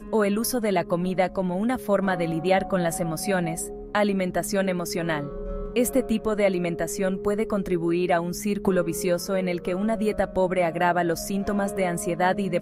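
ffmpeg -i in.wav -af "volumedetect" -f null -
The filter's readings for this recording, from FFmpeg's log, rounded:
mean_volume: -24.5 dB
max_volume: -7.7 dB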